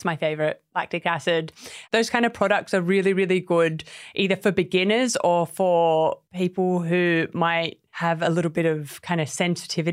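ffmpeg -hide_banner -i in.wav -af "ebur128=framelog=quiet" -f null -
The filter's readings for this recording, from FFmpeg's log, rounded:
Integrated loudness:
  I:         -22.7 LUFS
  Threshold: -32.9 LUFS
Loudness range:
  LRA:         2.0 LU
  Threshold: -42.4 LUFS
  LRA low:   -23.6 LUFS
  LRA high:  -21.5 LUFS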